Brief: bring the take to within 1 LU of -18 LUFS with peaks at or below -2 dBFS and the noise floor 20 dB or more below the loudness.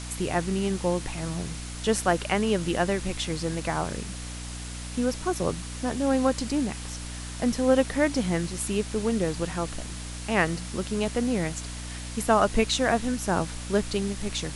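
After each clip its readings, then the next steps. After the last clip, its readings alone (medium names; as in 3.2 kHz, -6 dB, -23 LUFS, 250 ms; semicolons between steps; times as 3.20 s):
hum 60 Hz; highest harmonic 300 Hz; hum level -35 dBFS; noise floor -37 dBFS; noise floor target -48 dBFS; loudness -27.5 LUFS; peak level -7.5 dBFS; loudness target -18.0 LUFS
-> hum notches 60/120/180/240/300 Hz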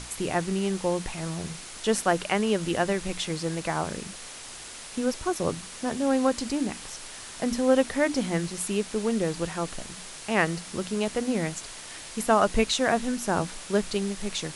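hum not found; noise floor -42 dBFS; noise floor target -48 dBFS
-> noise reduction 6 dB, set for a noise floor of -42 dBFS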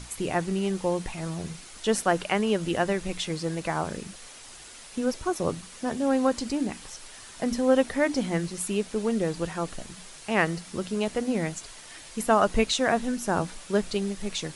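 noise floor -46 dBFS; noise floor target -48 dBFS
-> noise reduction 6 dB, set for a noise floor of -46 dBFS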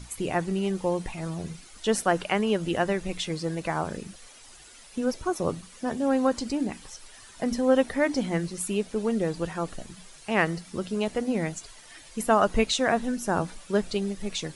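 noise floor -50 dBFS; loudness -27.5 LUFS; peak level -8.0 dBFS; loudness target -18.0 LUFS
-> trim +9.5 dB; peak limiter -2 dBFS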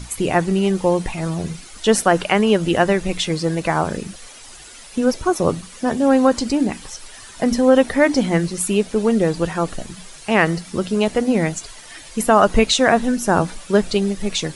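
loudness -18.5 LUFS; peak level -2.0 dBFS; noise floor -40 dBFS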